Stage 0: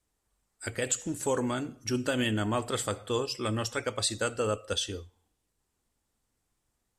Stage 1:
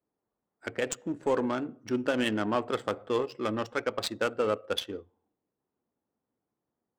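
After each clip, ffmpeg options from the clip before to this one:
ffmpeg -i in.wav -af "highpass=210,adynamicsmooth=sensitivity=3:basefreq=950,volume=2.5dB" out.wav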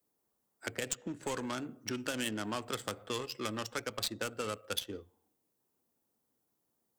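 ffmpeg -i in.wav -filter_complex "[0:a]acrossover=split=190|1200|5000[link_01][link_02][link_03][link_04];[link_01]acompressor=threshold=-44dB:ratio=4[link_05];[link_02]acompressor=threshold=-41dB:ratio=4[link_06];[link_03]acompressor=threshold=-43dB:ratio=4[link_07];[link_04]acompressor=threshold=-51dB:ratio=4[link_08];[link_05][link_06][link_07][link_08]amix=inputs=4:normalize=0,crystalizer=i=3:c=0" out.wav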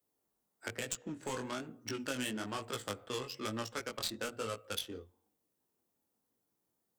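ffmpeg -i in.wav -af "flanger=delay=17:depth=6.7:speed=1.1,volume=1dB" out.wav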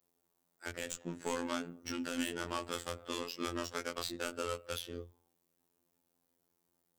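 ffmpeg -i in.wav -filter_complex "[0:a]acrossover=split=100[link_01][link_02];[link_02]alimiter=level_in=4.5dB:limit=-24dB:level=0:latency=1:release=94,volume=-4.5dB[link_03];[link_01][link_03]amix=inputs=2:normalize=0,afftfilt=real='hypot(re,im)*cos(PI*b)':imag='0':win_size=2048:overlap=0.75,volume=6dB" out.wav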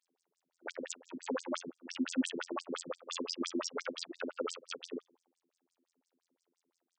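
ffmpeg -i in.wav -af "afftfilt=real='re*between(b*sr/1024,240*pow(6700/240,0.5+0.5*sin(2*PI*5.8*pts/sr))/1.41,240*pow(6700/240,0.5+0.5*sin(2*PI*5.8*pts/sr))*1.41)':imag='im*between(b*sr/1024,240*pow(6700/240,0.5+0.5*sin(2*PI*5.8*pts/sr))/1.41,240*pow(6700/240,0.5+0.5*sin(2*PI*5.8*pts/sr))*1.41)':win_size=1024:overlap=0.75,volume=8dB" out.wav

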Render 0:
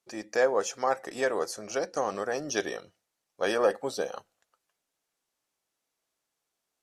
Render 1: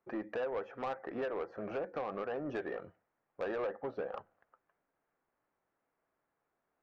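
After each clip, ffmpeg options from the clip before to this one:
ffmpeg -i in.wav -af "lowpass=frequency=1800:width=0.5412,lowpass=frequency=1800:width=1.3066,acompressor=threshold=-37dB:ratio=4,asoftclip=type=tanh:threshold=-35.5dB,volume=5dB" out.wav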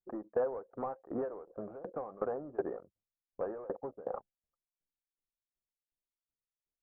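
ffmpeg -i in.wav -af "lowpass=frequency=1200:width=0.5412,lowpass=frequency=1200:width=1.3066,anlmdn=0.0158,aeval=exprs='val(0)*pow(10,-23*if(lt(mod(2.7*n/s,1),2*abs(2.7)/1000),1-mod(2.7*n/s,1)/(2*abs(2.7)/1000),(mod(2.7*n/s,1)-2*abs(2.7)/1000)/(1-2*abs(2.7)/1000))/20)':channel_layout=same,volume=8.5dB" out.wav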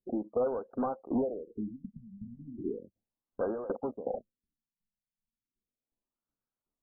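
ffmpeg -i in.wav -af "equalizer=frequency=240:width_type=o:width=0.57:gain=9.5,aresample=16000,asoftclip=type=tanh:threshold=-30dB,aresample=44100,afftfilt=real='re*lt(b*sr/1024,220*pow(1700/220,0.5+0.5*sin(2*PI*0.35*pts/sr)))':imag='im*lt(b*sr/1024,220*pow(1700/220,0.5+0.5*sin(2*PI*0.35*pts/sr)))':win_size=1024:overlap=0.75,volume=6dB" out.wav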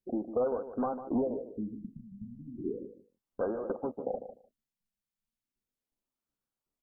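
ffmpeg -i in.wav -filter_complex "[0:a]asplit=2[link_01][link_02];[link_02]adelay=150,lowpass=frequency=1400:poles=1,volume=-10.5dB,asplit=2[link_03][link_04];[link_04]adelay=150,lowpass=frequency=1400:poles=1,volume=0.15[link_05];[link_01][link_03][link_05]amix=inputs=3:normalize=0" out.wav

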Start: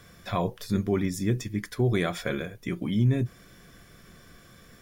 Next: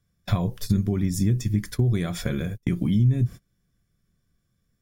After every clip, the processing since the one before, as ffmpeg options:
ffmpeg -i in.wav -af "agate=range=-32dB:threshold=-39dB:ratio=16:detection=peak,acompressor=threshold=-32dB:ratio=6,bass=frequency=250:gain=14,treble=frequency=4000:gain=7,volume=3dB" out.wav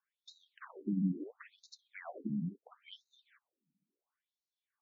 ffmpeg -i in.wav -filter_complex "[0:a]acrossover=split=120|440|4200[link_01][link_02][link_03][link_04];[link_04]acrusher=samples=17:mix=1:aa=0.000001[link_05];[link_01][link_02][link_03][link_05]amix=inputs=4:normalize=0,afftfilt=real='re*between(b*sr/1024,210*pow(5300/210,0.5+0.5*sin(2*PI*0.73*pts/sr))/1.41,210*pow(5300/210,0.5+0.5*sin(2*PI*0.73*pts/sr))*1.41)':imag='im*between(b*sr/1024,210*pow(5300/210,0.5+0.5*sin(2*PI*0.73*pts/sr))/1.41,210*pow(5300/210,0.5+0.5*sin(2*PI*0.73*pts/sr))*1.41)':win_size=1024:overlap=0.75,volume=-5dB" out.wav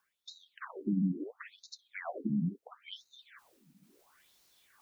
ffmpeg -i in.wav -af "alimiter=level_in=5dB:limit=-24dB:level=0:latency=1:release=402,volume=-5dB,areverse,acompressor=mode=upward:threshold=-56dB:ratio=2.5,areverse,volume=6.5dB" out.wav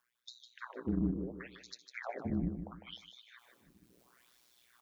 ffmpeg -i in.wav -filter_complex "[0:a]tremolo=f=120:d=0.974,aeval=exprs='0.0708*(cos(1*acos(clip(val(0)/0.0708,-1,1)))-cos(1*PI/2))+0.00282*(cos(5*acos(clip(val(0)/0.0708,-1,1)))-cos(5*PI/2))':channel_layout=same,asplit=2[link_01][link_02];[link_02]aecho=0:1:153|306|459|612:0.398|0.131|0.0434|0.0143[link_03];[link_01][link_03]amix=inputs=2:normalize=0,volume=1dB" out.wav

